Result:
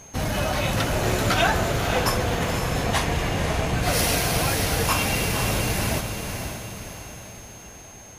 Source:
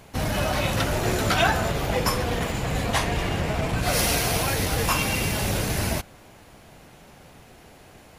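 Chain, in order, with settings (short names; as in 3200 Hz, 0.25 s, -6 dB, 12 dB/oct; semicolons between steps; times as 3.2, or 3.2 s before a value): diffused feedback echo 0.537 s, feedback 48%, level -6.5 dB; whine 6400 Hz -45 dBFS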